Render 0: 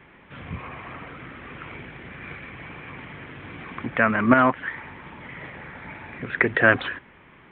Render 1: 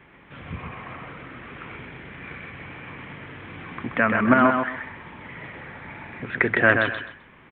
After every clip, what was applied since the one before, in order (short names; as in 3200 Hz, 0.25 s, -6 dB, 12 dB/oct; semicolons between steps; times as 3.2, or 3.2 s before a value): feedback echo 0.129 s, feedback 24%, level -5 dB; gain -1 dB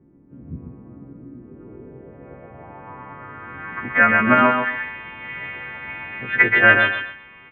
frequency quantiser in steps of 2 st; air absorption 230 m; low-pass sweep 280 Hz -> 2700 Hz, 1.37–4.37; gain +1.5 dB